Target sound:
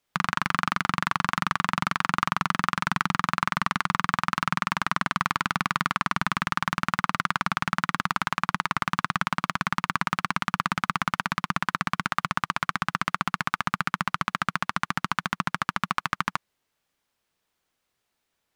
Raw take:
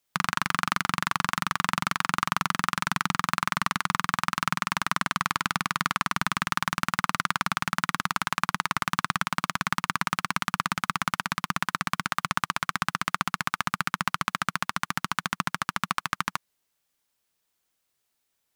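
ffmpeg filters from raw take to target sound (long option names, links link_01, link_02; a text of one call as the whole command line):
ffmpeg -i in.wav -af "highshelf=frequency=5200:gain=-11.5,alimiter=limit=-11dB:level=0:latency=1:release=33,volume=4.5dB" out.wav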